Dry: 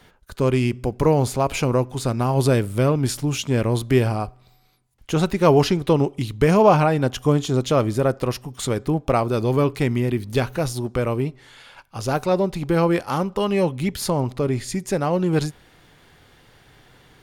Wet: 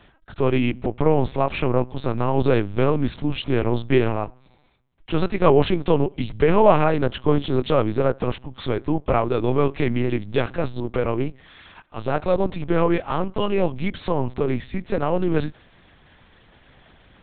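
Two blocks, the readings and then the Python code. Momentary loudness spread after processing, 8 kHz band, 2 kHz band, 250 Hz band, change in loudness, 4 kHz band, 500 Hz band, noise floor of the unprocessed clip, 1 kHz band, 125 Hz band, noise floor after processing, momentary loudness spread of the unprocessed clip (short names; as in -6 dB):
8 LU, under -40 dB, -0.5 dB, -1.5 dB, -1.0 dB, -3.0 dB, 0.0 dB, -55 dBFS, -0.5 dB, -3.5 dB, -55 dBFS, 8 LU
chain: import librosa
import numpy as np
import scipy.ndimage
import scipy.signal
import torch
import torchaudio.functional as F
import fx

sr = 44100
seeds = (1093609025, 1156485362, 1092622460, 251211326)

y = fx.lpc_vocoder(x, sr, seeds[0], excitation='pitch_kept', order=8)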